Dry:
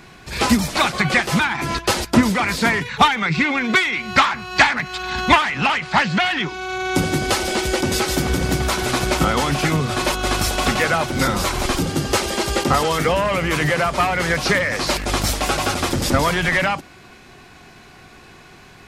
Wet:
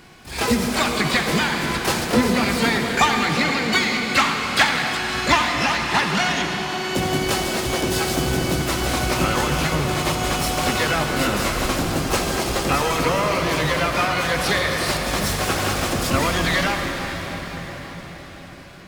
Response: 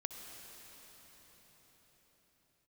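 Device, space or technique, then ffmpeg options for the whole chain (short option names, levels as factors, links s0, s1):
shimmer-style reverb: -filter_complex "[0:a]asplit=3[s0][s1][s2];[s0]afade=t=out:st=10.68:d=0.02[s3];[s1]highpass=f=70:w=0.5412,highpass=f=70:w=1.3066,afade=t=in:st=10.68:d=0.02,afade=t=out:st=11.13:d=0.02[s4];[s2]afade=t=in:st=11.13:d=0.02[s5];[s3][s4][s5]amix=inputs=3:normalize=0,asplit=2[s6][s7];[s7]asetrate=88200,aresample=44100,atempo=0.5,volume=0.562[s8];[s6][s8]amix=inputs=2:normalize=0[s9];[1:a]atrim=start_sample=2205[s10];[s9][s10]afir=irnorm=-1:irlink=0,volume=0.841"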